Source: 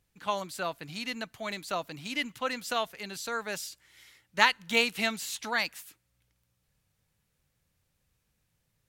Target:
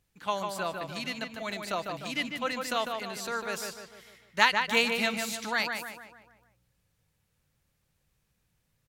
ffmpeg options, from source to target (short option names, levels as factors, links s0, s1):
-filter_complex "[0:a]asplit=2[s0][s1];[s1]adelay=150,lowpass=f=2800:p=1,volume=0.596,asplit=2[s2][s3];[s3]adelay=150,lowpass=f=2800:p=1,volume=0.5,asplit=2[s4][s5];[s5]adelay=150,lowpass=f=2800:p=1,volume=0.5,asplit=2[s6][s7];[s7]adelay=150,lowpass=f=2800:p=1,volume=0.5,asplit=2[s8][s9];[s9]adelay=150,lowpass=f=2800:p=1,volume=0.5,asplit=2[s10][s11];[s11]adelay=150,lowpass=f=2800:p=1,volume=0.5[s12];[s0][s2][s4][s6][s8][s10][s12]amix=inputs=7:normalize=0"